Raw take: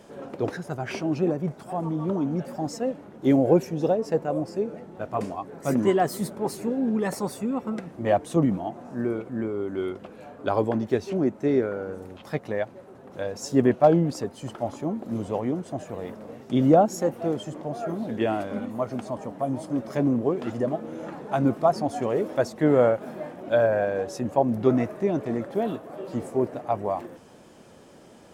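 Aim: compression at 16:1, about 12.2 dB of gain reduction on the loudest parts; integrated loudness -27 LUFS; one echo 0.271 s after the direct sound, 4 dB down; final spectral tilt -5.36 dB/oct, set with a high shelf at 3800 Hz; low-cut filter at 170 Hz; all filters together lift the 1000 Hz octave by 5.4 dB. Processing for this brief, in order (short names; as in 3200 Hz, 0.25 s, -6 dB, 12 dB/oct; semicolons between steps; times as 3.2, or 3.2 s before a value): HPF 170 Hz; bell 1000 Hz +8 dB; high shelf 3800 Hz +6 dB; compressor 16:1, threshold -21 dBFS; echo 0.271 s -4 dB; gain +0.5 dB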